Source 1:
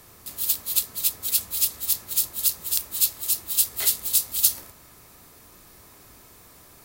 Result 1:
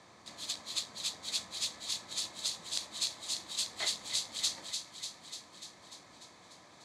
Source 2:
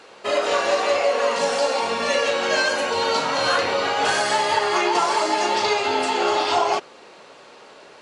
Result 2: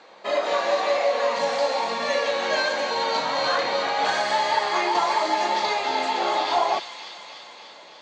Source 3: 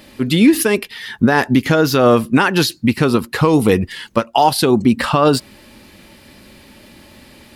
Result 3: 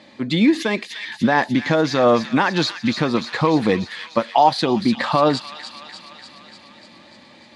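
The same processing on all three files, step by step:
loudspeaker in its box 200–5,800 Hz, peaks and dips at 260 Hz −4 dB, 410 Hz −10 dB, 1,400 Hz −7 dB, 2,800 Hz −9 dB, 5,300 Hz −8 dB
delay with a high-pass on its return 296 ms, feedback 67%, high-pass 2,200 Hz, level −6.5 dB

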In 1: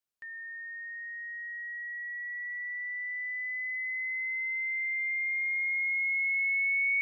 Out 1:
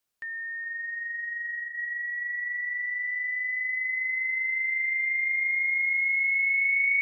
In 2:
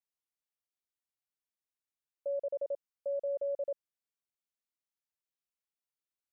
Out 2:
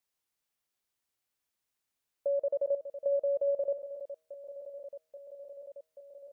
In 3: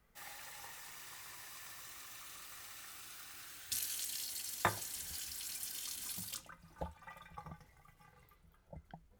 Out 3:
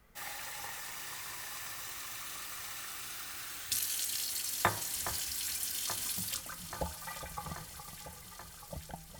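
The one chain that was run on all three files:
hum removal 158.4 Hz, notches 12
in parallel at +0.5 dB: downward compressor, threshold −43 dBFS
on the sum: delay that swaps between a low-pass and a high-pass 416 ms, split 2,200 Hz, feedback 85%, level −11 dB
level +2 dB

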